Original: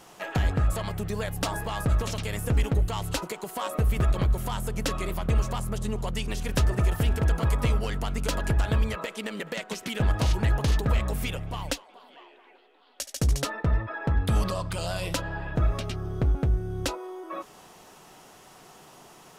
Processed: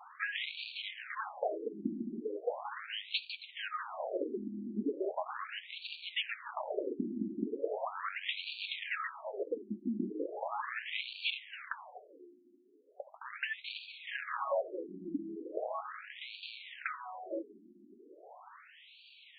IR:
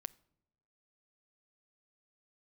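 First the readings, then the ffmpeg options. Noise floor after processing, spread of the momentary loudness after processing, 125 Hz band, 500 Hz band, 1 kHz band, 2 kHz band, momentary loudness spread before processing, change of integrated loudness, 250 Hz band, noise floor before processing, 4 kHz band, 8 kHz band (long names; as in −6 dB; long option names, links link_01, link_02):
−60 dBFS, 15 LU, −30.5 dB, −5.5 dB, −6.5 dB, −4.0 dB, 8 LU, −10.5 dB, −8.0 dB, −53 dBFS, −4.0 dB, below −40 dB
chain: -filter_complex "[0:a]asplit=2[link_01][link_02];[link_02]asoftclip=type=hard:threshold=-27.5dB,volume=-8.5dB[link_03];[link_01][link_03]amix=inputs=2:normalize=0,acrusher=bits=2:mode=log:mix=0:aa=0.000001,afftfilt=real='re*between(b*sr/1024,250*pow(3300/250,0.5+0.5*sin(2*PI*0.38*pts/sr))/1.41,250*pow(3300/250,0.5+0.5*sin(2*PI*0.38*pts/sr))*1.41)':imag='im*between(b*sr/1024,250*pow(3300/250,0.5+0.5*sin(2*PI*0.38*pts/sr))/1.41,250*pow(3300/250,0.5+0.5*sin(2*PI*0.38*pts/sr))*1.41)':win_size=1024:overlap=0.75"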